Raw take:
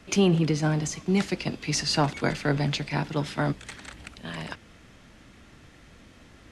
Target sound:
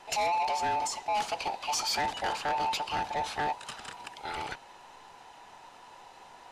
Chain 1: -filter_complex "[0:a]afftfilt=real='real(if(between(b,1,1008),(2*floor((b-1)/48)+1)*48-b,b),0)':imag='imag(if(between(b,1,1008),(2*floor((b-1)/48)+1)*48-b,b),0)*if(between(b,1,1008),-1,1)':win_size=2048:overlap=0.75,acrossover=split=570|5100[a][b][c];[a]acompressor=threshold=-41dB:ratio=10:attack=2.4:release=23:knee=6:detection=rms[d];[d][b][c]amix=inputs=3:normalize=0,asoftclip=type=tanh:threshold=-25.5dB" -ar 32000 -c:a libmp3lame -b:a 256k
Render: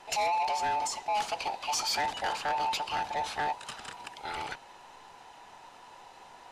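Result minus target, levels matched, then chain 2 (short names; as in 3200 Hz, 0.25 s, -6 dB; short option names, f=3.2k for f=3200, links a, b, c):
compressor: peak gain reduction +7 dB
-filter_complex "[0:a]afftfilt=real='real(if(between(b,1,1008),(2*floor((b-1)/48)+1)*48-b,b),0)':imag='imag(if(between(b,1,1008),(2*floor((b-1)/48)+1)*48-b,b),0)*if(between(b,1,1008),-1,1)':win_size=2048:overlap=0.75,acrossover=split=570|5100[a][b][c];[a]acompressor=threshold=-33dB:ratio=10:attack=2.4:release=23:knee=6:detection=rms[d];[d][b][c]amix=inputs=3:normalize=0,asoftclip=type=tanh:threshold=-25.5dB" -ar 32000 -c:a libmp3lame -b:a 256k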